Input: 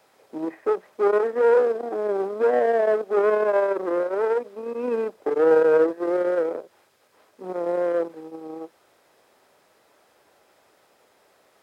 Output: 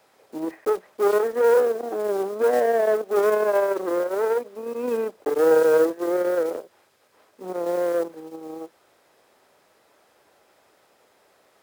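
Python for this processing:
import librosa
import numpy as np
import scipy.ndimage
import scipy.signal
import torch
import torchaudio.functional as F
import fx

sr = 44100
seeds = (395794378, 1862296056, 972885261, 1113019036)

y = fx.block_float(x, sr, bits=5)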